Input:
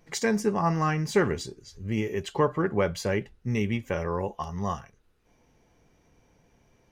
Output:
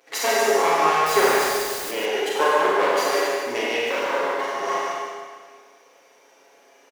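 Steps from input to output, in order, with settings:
lower of the sound and its delayed copy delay 7.3 ms
high-pass filter 370 Hz 24 dB per octave
in parallel at −2 dB: downward compressor, threshold −38 dBFS, peak gain reduction 17.5 dB
on the sum: four-comb reverb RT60 1.7 s, combs from 32 ms, DRR −4.5 dB
0:01.06–0:01.91: bit-depth reduction 6 bits, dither triangular
on a send: loudspeakers that aren't time-aligned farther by 11 metres −9 dB, 50 metres −6 dB
on the sum: level +2 dB

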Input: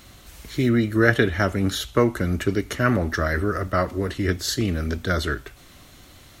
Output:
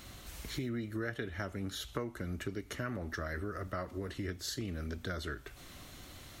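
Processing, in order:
downward compressor 4 to 1, threshold −35 dBFS, peak gain reduction 19.5 dB
level −3 dB

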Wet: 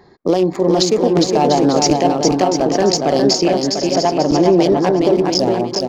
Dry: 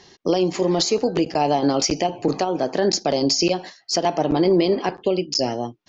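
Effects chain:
adaptive Wiener filter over 15 samples
0:03.33–0:04.46: high-shelf EQ 4,300 Hz −9.5 dB
bouncing-ball delay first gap 410 ms, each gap 0.7×, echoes 5
level +5 dB

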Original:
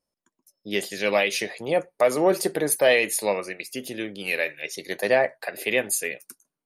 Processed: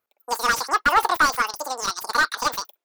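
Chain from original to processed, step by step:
high-pass filter 89 Hz 6 dB per octave
wrong playback speed 33 rpm record played at 78 rpm
slew-rate limiting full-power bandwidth 210 Hz
level +4 dB

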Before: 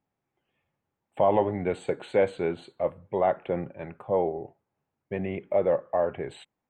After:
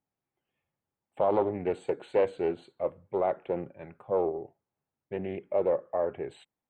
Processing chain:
dynamic equaliser 390 Hz, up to +7 dB, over −37 dBFS, Q 1.2
highs frequency-modulated by the lows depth 0.21 ms
level −7 dB

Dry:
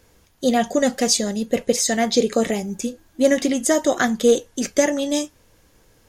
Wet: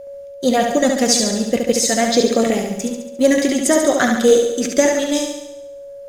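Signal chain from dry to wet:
mu-law and A-law mismatch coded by A
steady tone 560 Hz −35 dBFS
flutter between parallel walls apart 12 metres, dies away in 0.88 s
level +2.5 dB

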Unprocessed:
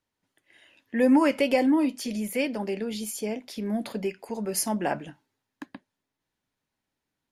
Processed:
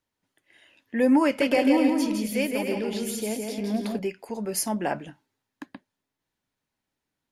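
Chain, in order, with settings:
0:01.25–0:03.99: bouncing-ball delay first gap 160 ms, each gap 0.65×, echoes 5

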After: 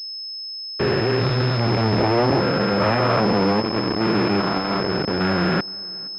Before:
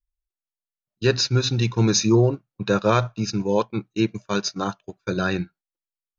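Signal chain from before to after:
spectrum averaged block by block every 400 ms
high-frequency loss of the air 79 metres
in parallel at −5 dB: comparator with hysteresis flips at −32.5 dBFS
on the sum: upward compression, threshold −31 dBFS
harmonic generator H 3 −7 dB, 6 −18 dB, 8 −25 dB, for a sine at −3.5 dBFS
fuzz pedal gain 41 dB, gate −40 dBFS
high-pass filter 200 Hz 6 dB per octave
on a send: tape delay 471 ms, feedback 55%, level −22.5 dB, low-pass 2,000 Hz
on the sum: switching amplifier with a slow clock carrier 5,200 Hz

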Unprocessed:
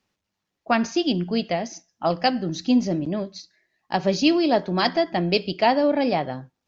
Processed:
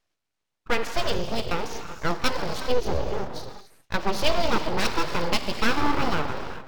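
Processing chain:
reverb whose tail is shaped and stops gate 430 ms flat, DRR 5.5 dB
full-wave rectification
linearly interpolated sample-rate reduction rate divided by 2×
level −1 dB

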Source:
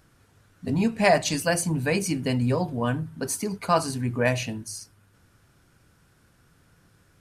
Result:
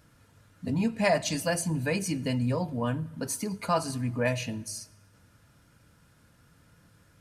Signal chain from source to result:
in parallel at +0.5 dB: downward compressor, threshold −34 dBFS, peak gain reduction 18 dB
on the sum: notch comb filter 380 Hz
convolution reverb RT60 1.3 s, pre-delay 55 ms, DRR 24 dB
level −5.5 dB

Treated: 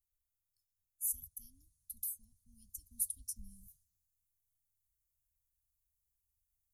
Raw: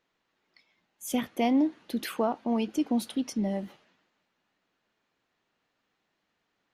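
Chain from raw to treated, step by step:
inverse Chebyshev band-stop filter 340–2,200 Hz, stop band 80 dB
speech leveller 0.5 s
level +12 dB

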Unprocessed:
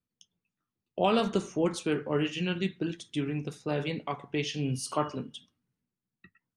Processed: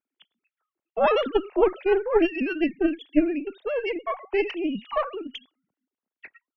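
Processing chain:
three sine waves on the formant tracks
harmonic generator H 2 −9 dB, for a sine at −15.5 dBFS
level +6 dB

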